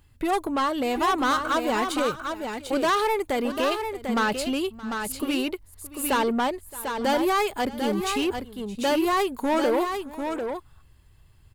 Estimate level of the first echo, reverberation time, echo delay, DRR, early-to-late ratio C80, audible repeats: -19.0 dB, no reverb, 621 ms, no reverb, no reverb, 2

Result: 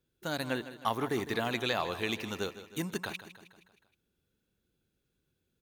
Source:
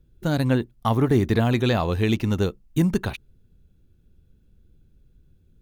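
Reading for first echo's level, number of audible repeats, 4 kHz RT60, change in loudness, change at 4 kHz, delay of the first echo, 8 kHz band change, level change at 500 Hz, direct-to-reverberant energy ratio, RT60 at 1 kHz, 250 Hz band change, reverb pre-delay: -13.5 dB, 5, no reverb, -11.5 dB, -3.0 dB, 157 ms, -3.0 dB, -10.0 dB, no reverb, no reverb, -15.0 dB, no reverb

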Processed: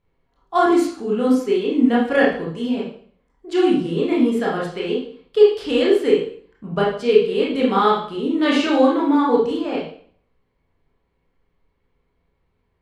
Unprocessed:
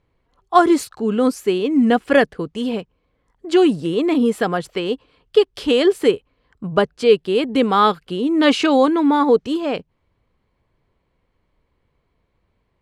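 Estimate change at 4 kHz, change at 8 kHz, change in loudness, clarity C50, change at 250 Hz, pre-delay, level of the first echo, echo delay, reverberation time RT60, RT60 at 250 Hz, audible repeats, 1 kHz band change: -3.0 dB, no reading, -1.0 dB, 3.0 dB, -1.0 dB, 20 ms, no echo, no echo, 0.55 s, 0.55 s, no echo, -2.5 dB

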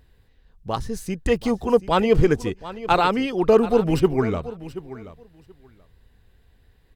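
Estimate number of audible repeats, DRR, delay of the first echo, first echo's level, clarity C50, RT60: 2, no reverb, 730 ms, -15.5 dB, no reverb, no reverb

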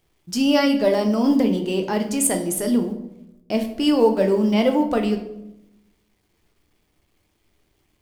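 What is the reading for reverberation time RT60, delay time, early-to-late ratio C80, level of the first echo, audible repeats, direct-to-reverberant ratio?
0.90 s, no echo, 12.5 dB, no echo, no echo, 4.0 dB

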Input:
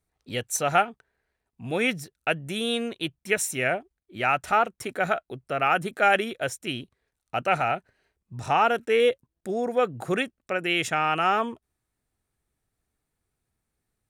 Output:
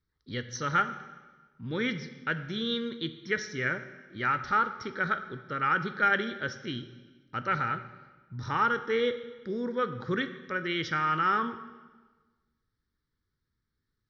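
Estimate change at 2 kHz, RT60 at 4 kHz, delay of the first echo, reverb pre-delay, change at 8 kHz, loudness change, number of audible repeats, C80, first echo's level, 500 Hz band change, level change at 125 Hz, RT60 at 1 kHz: -2.5 dB, 1.2 s, no echo, 12 ms, under -10 dB, -4.5 dB, no echo, 13.5 dB, no echo, -8.0 dB, -1.0 dB, 1.3 s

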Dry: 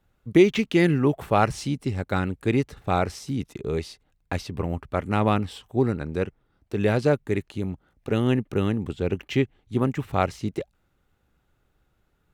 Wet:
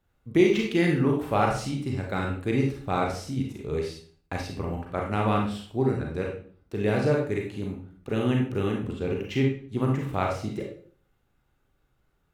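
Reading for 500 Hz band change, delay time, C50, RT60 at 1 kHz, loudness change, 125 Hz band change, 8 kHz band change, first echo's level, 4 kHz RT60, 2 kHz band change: -2.0 dB, no echo, 3.5 dB, 0.45 s, -2.0 dB, -2.0 dB, -2.5 dB, no echo, 0.40 s, -2.0 dB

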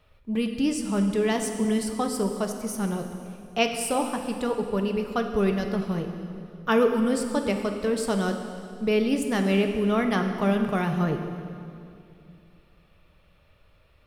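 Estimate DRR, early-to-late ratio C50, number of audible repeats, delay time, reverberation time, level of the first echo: 4.5 dB, 6.0 dB, no echo, no echo, 2.5 s, no echo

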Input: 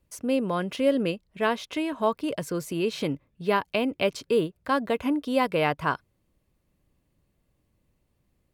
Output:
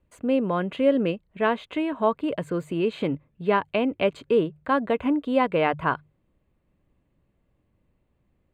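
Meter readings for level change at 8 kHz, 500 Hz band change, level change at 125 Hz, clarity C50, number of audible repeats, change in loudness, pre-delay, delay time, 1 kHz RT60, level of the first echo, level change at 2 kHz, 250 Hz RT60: under -10 dB, +2.5 dB, +1.5 dB, no reverb, no echo, +2.0 dB, no reverb, no echo, no reverb, no echo, +0.5 dB, no reverb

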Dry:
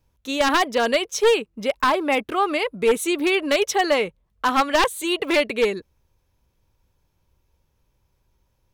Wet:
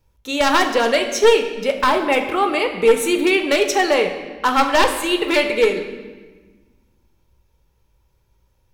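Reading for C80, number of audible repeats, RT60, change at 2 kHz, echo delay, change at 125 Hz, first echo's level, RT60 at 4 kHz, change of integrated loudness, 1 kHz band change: 10.0 dB, no echo, 1.3 s, +3.5 dB, no echo, no reading, no echo, 1.1 s, +3.5 dB, +3.5 dB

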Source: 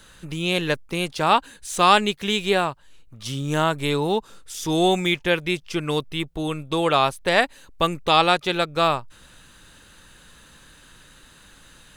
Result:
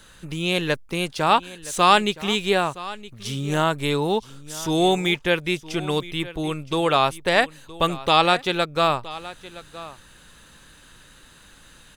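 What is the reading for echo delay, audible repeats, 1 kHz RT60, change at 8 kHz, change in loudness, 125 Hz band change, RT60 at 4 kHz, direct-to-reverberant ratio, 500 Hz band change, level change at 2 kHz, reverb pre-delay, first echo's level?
968 ms, 1, no reverb, 0.0 dB, 0.0 dB, 0.0 dB, no reverb, no reverb, 0.0 dB, 0.0 dB, no reverb, -17.5 dB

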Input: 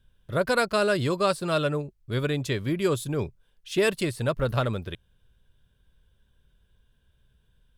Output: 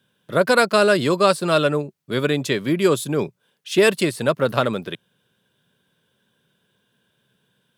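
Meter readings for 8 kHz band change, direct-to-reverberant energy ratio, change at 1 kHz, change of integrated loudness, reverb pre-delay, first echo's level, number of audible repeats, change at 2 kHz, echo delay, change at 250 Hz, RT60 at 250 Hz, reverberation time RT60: +7.5 dB, no reverb, +7.5 dB, +7.0 dB, no reverb, no echo, no echo, +7.5 dB, no echo, +7.0 dB, no reverb, no reverb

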